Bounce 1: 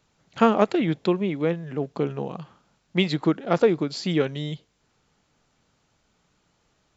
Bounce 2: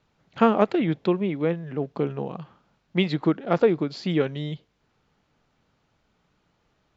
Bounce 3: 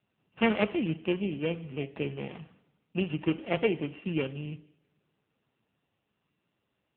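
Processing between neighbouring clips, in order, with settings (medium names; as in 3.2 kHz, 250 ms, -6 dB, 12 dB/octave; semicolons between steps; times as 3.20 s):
distance through air 140 m
sorted samples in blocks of 16 samples; two-slope reverb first 0.73 s, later 2.8 s, from -27 dB, DRR 11.5 dB; trim -6 dB; AMR-NB 6.7 kbps 8 kHz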